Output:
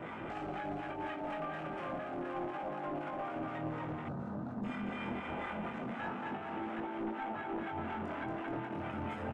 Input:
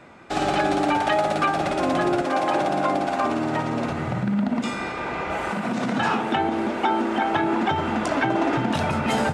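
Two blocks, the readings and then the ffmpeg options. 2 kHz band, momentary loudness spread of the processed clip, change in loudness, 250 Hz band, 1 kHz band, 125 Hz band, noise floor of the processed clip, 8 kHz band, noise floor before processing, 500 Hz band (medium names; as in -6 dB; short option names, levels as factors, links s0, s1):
-16.5 dB, 2 LU, -16.5 dB, -16.0 dB, -17.0 dB, -14.5 dB, -43 dBFS, under -30 dB, -30 dBFS, -16.5 dB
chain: -filter_complex "[0:a]aecho=1:1:230|425.5|591.7|732.9|853:0.631|0.398|0.251|0.158|0.1,acompressor=threshold=0.0224:ratio=6,alimiter=level_in=3.16:limit=0.0631:level=0:latency=1:release=450,volume=0.316,flanger=delay=18.5:depth=6.2:speed=0.29,acrossover=split=870[s0][s1];[s0]aeval=exprs='val(0)*(1-0.5/2+0.5/2*cos(2*PI*4.1*n/s))':c=same[s2];[s1]aeval=exprs='val(0)*(1-0.5/2-0.5/2*cos(2*PI*4.1*n/s))':c=same[s3];[s2][s3]amix=inputs=2:normalize=0,aeval=exprs='clip(val(0),-1,0.00596)':c=same,afwtdn=0.00141,volume=2.99"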